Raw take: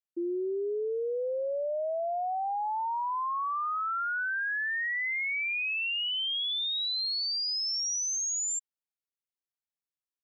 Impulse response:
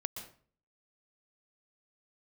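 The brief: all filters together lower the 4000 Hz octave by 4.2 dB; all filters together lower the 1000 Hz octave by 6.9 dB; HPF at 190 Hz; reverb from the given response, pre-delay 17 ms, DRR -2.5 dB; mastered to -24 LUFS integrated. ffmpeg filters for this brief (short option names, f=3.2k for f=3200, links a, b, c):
-filter_complex "[0:a]highpass=190,equalizer=f=1k:t=o:g=-9,equalizer=f=4k:t=o:g=-5,asplit=2[a][b];[1:a]atrim=start_sample=2205,adelay=17[c];[b][c]afir=irnorm=-1:irlink=0,volume=2.5dB[d];[a][d]amix=inputs=2:normalize=0,volume=4.5dB"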